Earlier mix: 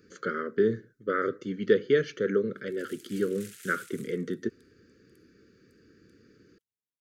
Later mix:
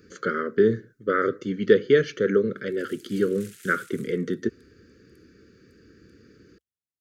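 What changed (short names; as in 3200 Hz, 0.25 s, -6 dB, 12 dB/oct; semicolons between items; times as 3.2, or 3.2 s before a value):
speech +5.0 dB; master: add bell 65 Hz +7 dB 0.76 oct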